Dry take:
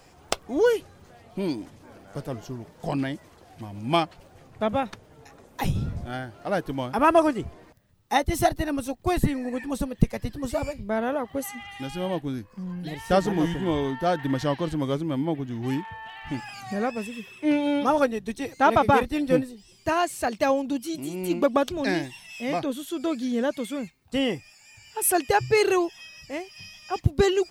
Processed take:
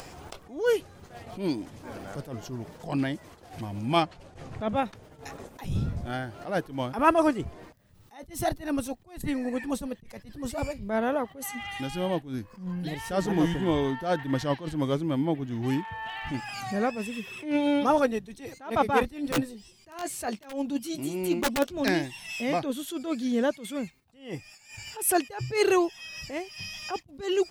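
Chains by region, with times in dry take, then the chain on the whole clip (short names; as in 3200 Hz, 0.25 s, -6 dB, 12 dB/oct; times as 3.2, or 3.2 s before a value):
4.02–4.77 LPF 9200 Hz + low shelf 150 Hz +3.5 dB
19.17–21.89 wrapped overs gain 13.5 dB + doubler 14 ms -11.5 dB
whole clip: gate -50 dBFS, range -10 dB; upward compressor, threshold -29 dBFS; attack slew limiter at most 140 dB/s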